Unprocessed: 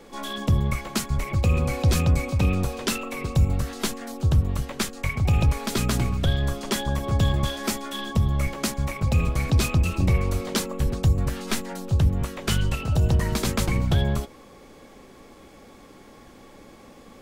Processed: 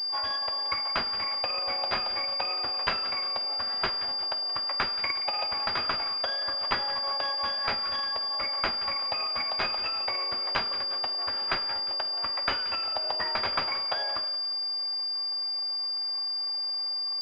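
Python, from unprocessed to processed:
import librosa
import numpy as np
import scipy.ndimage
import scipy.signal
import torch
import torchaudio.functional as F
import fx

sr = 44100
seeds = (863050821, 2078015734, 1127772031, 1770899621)

y = scipy.signal.sosfilt(scipy.signal.butter(4, 700.0, 'highpass', fs=sr, output='sos'), x)
y = fx.transient(y, sr, attack_db=5, sustain_db=-7)
y = fx.echo_split(y, sr, split_hz=1100.0, low_ms=104, high_ms=177, feedback_pct=52, wet_db=-14.5)
y = fx.rev_fdn(y, sr, rt60_s=1.1, lf_ratio=1.0, hf_ratio=0.65, size_ms=15.0, drr_db=9.0)
y = fx.pwm(y, sr, carrier_hz=4800.0)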